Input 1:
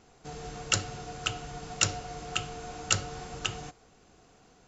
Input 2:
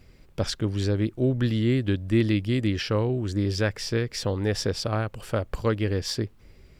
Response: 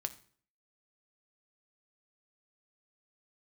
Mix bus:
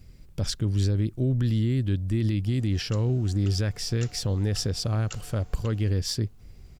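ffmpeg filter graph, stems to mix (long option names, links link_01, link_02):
-filter_complex "[0:a]adelay=2200,volume=-6dB[link_01];[1:a]bass=frequency=250:gain=11,treble=frequency=4000:gain=9,volume=-6dB,asplit=2[link_02][link_03];[link_03]apad=whole_len=303068[link_04];[link_01][link_04]sidechaincompress=threshold=-29dB:ratio=4:attack=12:release=1090[link_05];[link_05][link_02]amix=inputs=2:normalize=0,alimiter=limit=-16dB:level=0:latency=1:release=35"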